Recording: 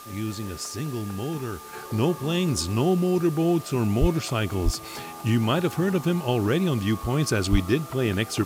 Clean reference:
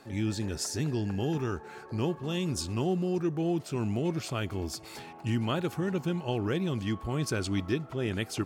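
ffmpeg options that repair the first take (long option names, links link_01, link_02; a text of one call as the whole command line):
ffmpeg -i in.wav -filter_complex "[0:a]bandreject=frequency=1200:width=30,asplit=3[link_01][link_02][link_03];[link_01]afade=type=out:start_time=4:duration=0.02[link_04];[link_02]highpass=frequency=140:width=0.5412,highpass=frequency=140:width=1.3066,afade=type=in:start_time=4:duration=0.02,afade=type=out:start_time=4.12:duration=0.02[link_05];[link_03]afade=type=in:start_time=4.12:duration=0.02[link_06];[link_04][link_05][link_06]amix=inputs=3:normalize=0,asplit=3[link_07][link_08][link_09];[link_07]afade=type=out:start_time=4.64:duration=0.02[link_10];[link_08]highpass=frequency=140:width=0.5412,highpass=frequency=140:width=1.3066,afade=type=in:start_time=4.64:duration=0.02,afade=type=out:start_time=4.76:duration=0.02[link_11];[link_09]afade=type=in:start_time=4.76:duration=0.02[link_12];[link_10][link_11][link_12]amix=inputs=3:normalize=0,asplit=3[link_13][link_14][link_15];[link_13]afade=type=out:start_time=7.51:duration=0.02[link_16];[link_14]highpass=frequency=140:width=0.5412,highpass=frequency=140:width=1.3066,afade=type=in:start_time=7.51:duration=0.02,afade=type=out:start_time=7.63:duration=0.02[link_17];[link_15]afade=type=in:start_time=7.63:duration=0.02[link_18];[link_16][link_17][link_18]amix=inputs=3:normalize=0,afwtdn=0.005,asetnsamples=nb_out_samples=441:pad=0,asendcmd='1.73 volume volume -7dB',volume=0dB" out.wav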